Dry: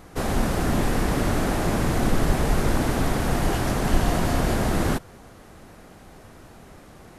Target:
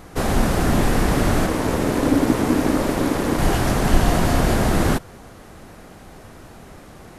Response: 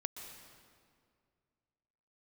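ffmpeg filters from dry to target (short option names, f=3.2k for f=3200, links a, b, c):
-filter_complex "[0:a]asplit=3[a][b][c];[a]afade=t=out:st=1.46:d=0.02[d];[b]aeval=exprs='val(0)*sin(2*PI*280*n/s)':c=same,afade=t=in:st=1.46:d=0.02,afade=t=out:st=3.37:d=0.02[e];[c]afade=t=in:st=3.37:d=0.02[f];[d][e][f]amix=inputs=3:normalize=0,volume=4.5dB"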